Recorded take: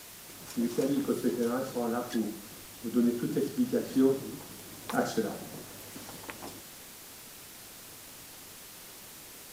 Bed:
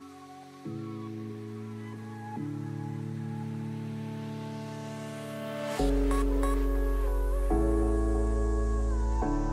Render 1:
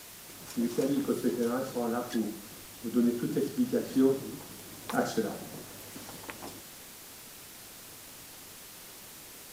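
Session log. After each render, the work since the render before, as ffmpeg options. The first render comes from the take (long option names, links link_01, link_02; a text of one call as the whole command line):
ffmpeg -i in.wav -af anull out.wav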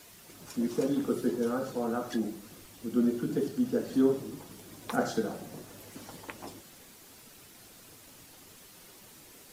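ffmpeg -i in.wav -af "afftdn=noise_reduction=7:noise_floor=-49" out.wav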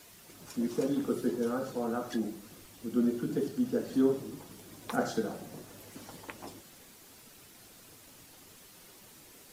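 ffmpeg -i in.wav -af "volume=-1.5dB" out.wav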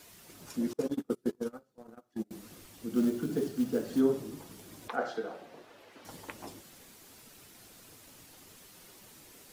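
ffmpeg -i in.wav -filter_complex "[0:a]asettb=1/sr,asplit=3[link_01][link_02][link_03];[link_01]atrim=end=0.734[link_04];[link_02]atrim=start=0.73:end=2.31,asetpts=PTS-STARTPTS,afade=type=in:duration=0.004:curve=qsin,afade=type=out:start_time=1.576:duration=0.004:curve=qsin,agate=range=-34dB:threshold=-30dB:ratio=16:release=100:detection=peak[link_05];[link_03]atrim=start=2.306[link_06];[link_04][link_05]acrossfade=duration=0.004:curve1=hsin:curve2=qsin[link_07];[link_07][link_06]acrossfade=duration=0.004:curve1=qsin:curve2=hsin,asplit=3[link_08][link_09][link_10];[link_08]afade=type=out:start_time=2.93:duration=0.02[link_11];[link_09]acrusher=bits=6:mode=log:mix=0:aa=0.000001,afade=type=in:start_time=2.93:duration=0.02,afade=type=out:start_time=3.99:duration=0.02[link_12];[link_10]afade=type=in:start_time=3.99:duration=0.02[link_13];[link_11][link_12][link_13]amix=inputs=3:normalize=0,asettb=1/sr,asplit=3[link_14][link_15][link_16];[link_14]atrim=end=4.884[link_17];[link_15]atrim=start=4.88:end=6.05,asetpts=PTS-STARTPTS,afade=type=in:duration=0.004:curve=qsin,afade=type=out:start_time=1.166:duration=0.004:curve=qsin,acrossover=split=360 4000:gain=0.141 1 0.126[link_18][link_19][link_20];[link_18][link_19][link_20]amix=inputs=3:normalize=0[link_21];[link_16]atrim=start=6.046[link_22];[link_17][link_21]acrossfade=duration=0.004:curve1=hsin:curve2=qsin[link_23];[link_23][link_22]acrossfade=duration=0.004:curve1=qsin:curve2=hsin" out.wav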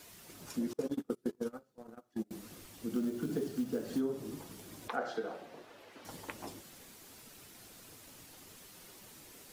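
ffmpeg -i in.wav -af "acompressor=threshold=-31dB:ratio=5" out.wav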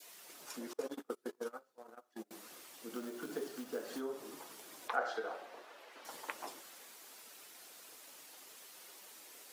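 ffmpeg -i in.wav -af "highpass=490,adynamicequalizer=threshold=0.00158:dfrequency=1200:dqfactor=0.97:tfrequency=1200:tqfactor=0.97:attack=5:release=100:ratio=0.375:range=2:mode=boostabove:tftype=bell" out.wav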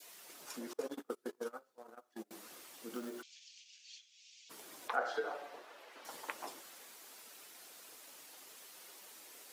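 ffmpeg -i in.wav -filter_complex "[0:a]asplit=3[link_01][link_02][link_03];[link_01]afade=type=out:start_time=3.21:duration=0.02[link_04];[link_02]asuperpass=centerf=4100:order=12:qfactor=0.88,afade=type=in:start_time=3.21:duration=0.02,afade=type=out:start_time=4.49:duration=0.02[link_05];[link_03]afade=type=in:start_time=4.49:duration=0.02[link_06];[link_04][link_05][link_06]amix=inputs=3:normalize=0,asettb=1/sr,asplit=3[link_07][link_08][link_09];[link_07]atrim=end=5.134[link_10];[link_08]atrim=start=5.13:end=5.57,asetpts=PTS-STARTPTS,afade=type=in:duration=0.004:curve=qsin,afade=type=out:start_time=0.436:duration=0.004:curve=qsin,aecho=1:1:6.9:0.6,atrim=end_sample=19404[link_11];[link_09]atrim=start=5.566[link_12];[link_10][link_11]acrossfade=duration=0.004:curve1=hsin:curve2=qsin[link_13];[link_13][link_12]acrossfade=duration=0.004:curve1=qsin:curve2=hsin" out.wav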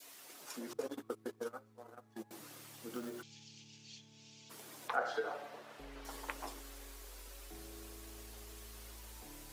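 ffmpeg -i in.wav -i bed.wav -filter_complex "[1:a]volume=-26.5dB[link_01];[0:a][link_01]amix=inputs=2:normalize=0" out.wav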